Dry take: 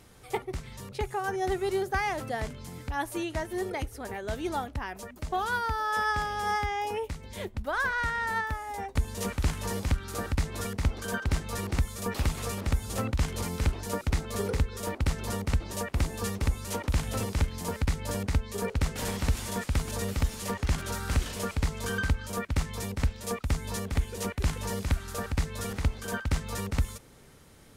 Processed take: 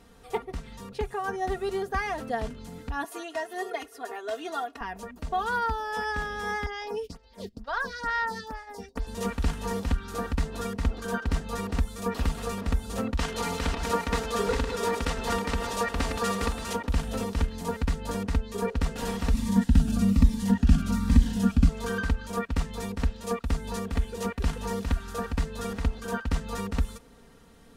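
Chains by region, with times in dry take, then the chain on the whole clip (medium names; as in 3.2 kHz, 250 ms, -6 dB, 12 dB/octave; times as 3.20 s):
3.04–4.81 s: high-pass 460 Hz + comb 2.8 ms, depth 81%
6.66–9.07 s: gate -39 dBFS, range -10 dB + peaking EQ 4.9 kHz +15 dB 0.69 oct + lamp-driven phase shifter 2.2 Hz
13.18–16.73 s: backward echo that repeats 288 ms, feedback 42%, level -6 dB + overdrive pedal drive 12 dB, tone 7.1 kHz, clips at -14 dBFS
19.32–21.69 s: resonant low shelf 300 Hz +7 dB, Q 3 + Shepard-style phaser falling 1.2 Hz
whole clip: treble shelf 4.6 kHz -8 dB; band-stop 2.2 kHz, Q 8.4; comb 4.3 ms, depth 64%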